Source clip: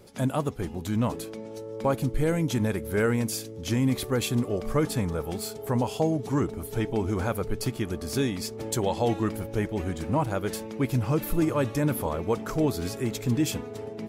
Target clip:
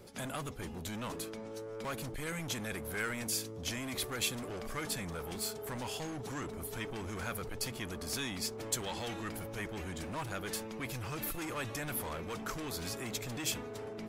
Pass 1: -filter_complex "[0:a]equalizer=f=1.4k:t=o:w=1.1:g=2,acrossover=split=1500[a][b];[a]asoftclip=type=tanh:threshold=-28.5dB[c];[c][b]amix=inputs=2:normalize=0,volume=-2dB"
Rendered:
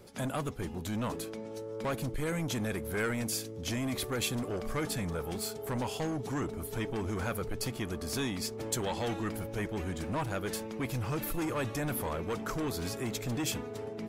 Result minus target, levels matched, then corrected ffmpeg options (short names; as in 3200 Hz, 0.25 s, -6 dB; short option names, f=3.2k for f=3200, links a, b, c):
soft clip: distortion -5 dB
-filter_complex "[0:a]equalizer=f=1.4k:t=o:w=1.1:g=2,acrossover=split=1500[a][b];[a]asoftclip=type=tanh:threshold=-37.5dB[c];[c][b]amix=inputs=2:normalize=0,volume=-2dB"